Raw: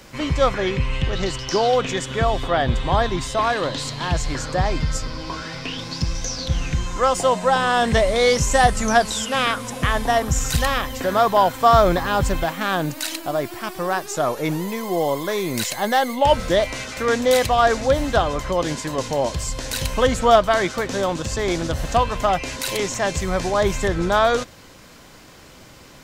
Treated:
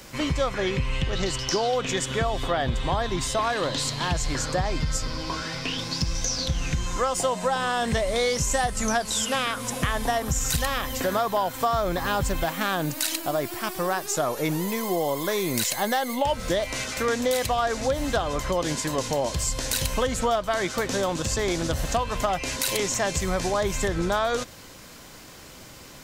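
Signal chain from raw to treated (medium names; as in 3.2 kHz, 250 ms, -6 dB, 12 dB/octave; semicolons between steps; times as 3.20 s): treble shelf 5.9 kHz +7 dB; compression, threshold -20 dBFS, peak gain reduction 11.5 dB; trim -1 dB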